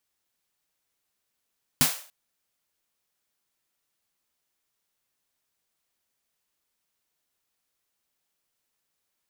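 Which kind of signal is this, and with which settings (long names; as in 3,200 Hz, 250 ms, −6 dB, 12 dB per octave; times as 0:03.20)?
synth snare length 0.29 s, tones 150 Hz, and 250 Hz, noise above 530 Hz, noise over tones 4 dB, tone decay 0.14 s, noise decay 0.43 s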